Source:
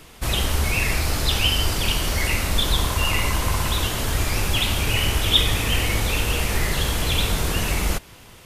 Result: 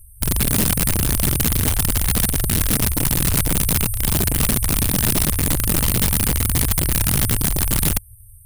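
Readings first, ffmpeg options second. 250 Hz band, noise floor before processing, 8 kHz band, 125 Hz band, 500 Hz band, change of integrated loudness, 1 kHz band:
+6.5 dB, -46 dBFS, +8.0 dB, +3.5 dB, -0.5 dB, +3.5 dB, -3.0 dB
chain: -af "acontrast=56,afftfilt=real='re*(1-between(b*sr/4096,110,8300))':imag='im*(1-between(b*sr/4096,110,8300))':win_size=4096:overlap=0.75,aeval=exprs='(mod(4.47*val(0)+1,2)-1)/4.47':c=same"

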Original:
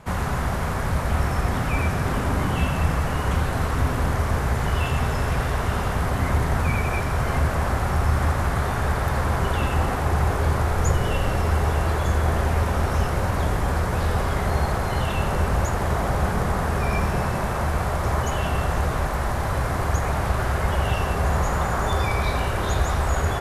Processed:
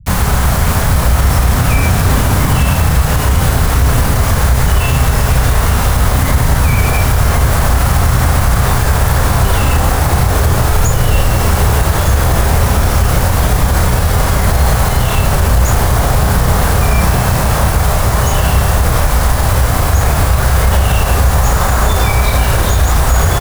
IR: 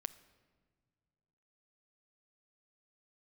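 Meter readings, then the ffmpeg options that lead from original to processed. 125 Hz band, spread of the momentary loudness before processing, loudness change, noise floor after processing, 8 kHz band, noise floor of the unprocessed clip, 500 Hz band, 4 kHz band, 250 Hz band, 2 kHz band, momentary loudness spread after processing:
+11.5 dB, 2 LU, +11.5 dB, -14 dBFS, +17.5 dB, -25 dBFS, +8.0 dB, +13.5 dB, +9.5 dB, +9.5 dB, 1 LU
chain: -filter_complex "[0:a]highshelf=f=7.7k:g=12,bandreject=f=370:w=12,acrossover=split=120[a][b];[a]acontrast=70[c];[b]acrusher=bits=4:mix=0:aa=0.000001[d];[c][d]amix=inputs=2:normalize=0,asplit=2[e][f];[f]adelay=33,volume=-4dB[g];[e][g]amix=inputs=2:normalize=0,alimiter=level_in=9.5dB:limit=-1dB:release=50:level=0:latency=1,volume=-1dB"

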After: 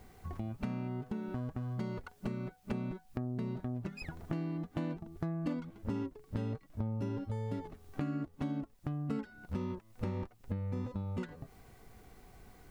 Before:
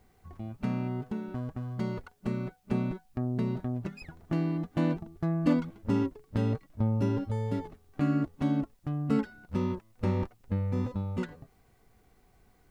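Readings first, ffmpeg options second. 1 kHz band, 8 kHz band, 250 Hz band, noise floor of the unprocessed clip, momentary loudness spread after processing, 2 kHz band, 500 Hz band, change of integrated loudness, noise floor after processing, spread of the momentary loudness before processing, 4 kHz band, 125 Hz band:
-6.5 dB, n/a, -8.0 dB, -65 dBFS, 9 LU, -5.5 dB, -7.5 dB, -7.5 dB, -62 dBFS, 8 LU, -6.0 dB, -6.5 dB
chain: -af "acompressor=threshold=-44dB:ratio=4,volume=7dB"

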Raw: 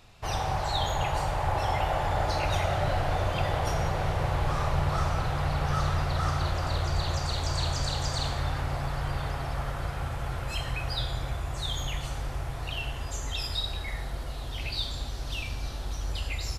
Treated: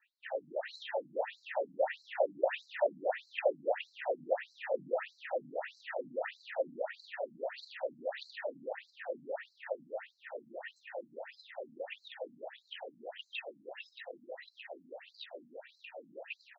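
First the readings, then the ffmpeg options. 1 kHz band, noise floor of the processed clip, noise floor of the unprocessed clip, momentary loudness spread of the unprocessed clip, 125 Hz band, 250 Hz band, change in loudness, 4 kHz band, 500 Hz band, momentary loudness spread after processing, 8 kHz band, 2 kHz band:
-12.5 dB, -71 dBFS, -36 dBFS, 7 LU, under -35 dB, -15.0 dB, -9.0 dB, -16.5 dB, 0.0 dB, 14 LU, under -30 dB, -7.5 dB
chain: -filter_complex "[0:a]highpass=150,acrossover=split=240[a][b];[b]adynamicsmooth=sensitivity=3.5:basefreq=1.5k[c];[a][c]amix=inputs=2:normalize=0,asplit=3[d][e][f];[d]bandpass=f=530:t=q:w=8,volume=0dB[g];[e]bandpass=f=1.84k:t=q:w=8,volume=-6dB[h];[f]bandpass=f=2.48k:t=q:w=8,volume=-9dB[i];[g][h][i]amix=inputs=3:normalize=0,asplit=5[j][k][l][m][n];[k]adelay=419,afreqshift=100,volume=-6dB[o];[l]adelay=838,afreqshift=200,volume=-15.4dB[p];[m]adelay=1257,afreqshift=300,volume=-24.7dB[q];[n]adelay=1676,afreqshift=400,volume=-34.1dB[r];[j][o][p][q][r]amix=inputs=5:normalize=0,afftfilt=real='re*between(b*sr/1024,210*pow(5700/210,0.5+0.5*sin(2*PI*1.6*pts/sr))/1.41,210*pow(5700/210,0.5+0.5*sin(2*PI*1.6*pts/sr))*1.41)':imag='im*between(b*sr/1024,210*pow(5700/210,0.5+0.5*sin(2*PI*1.6*pts/sr))/1.41,210*pow(5700/210,0.5+0.5*sin(2*PI*1.6*pts/sr))*1.41)':win_size=1024:overlap=0.75,volume=13.5dB"

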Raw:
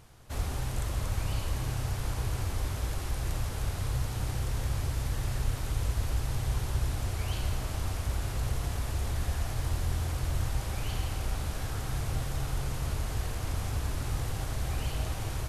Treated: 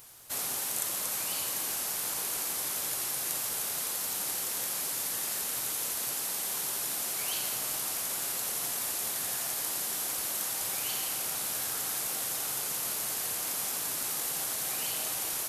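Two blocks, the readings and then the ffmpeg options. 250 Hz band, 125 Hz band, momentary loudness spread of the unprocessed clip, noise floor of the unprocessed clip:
-7.5 dB, -24.5 dB, 2 LU, -36 dBFS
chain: -af "afftfilt=real='re*lt(hypot(re,im),0.141)':imag='im*lt(hypot(re,im),0.141)':win_size=1024:overlap=0.75,aemphasis=mode=production:type=riaa"

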